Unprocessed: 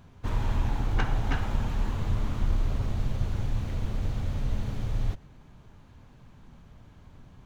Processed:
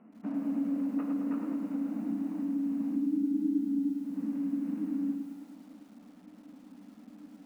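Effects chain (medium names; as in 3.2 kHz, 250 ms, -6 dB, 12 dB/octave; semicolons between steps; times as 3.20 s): median filter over 15 samples; 2.95–3.92 s: tilt EQ -3.5 dB/octave; compression 10:1, threshold -31 dBFS, peak gain reduction 26 dB; frequency shift -310 Hz; brick-wall FIR band-pass 180–3000 Hz; distance through air 230 m; bit-crushed delay 107 ms, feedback 55%, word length 10-bit, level -6 dB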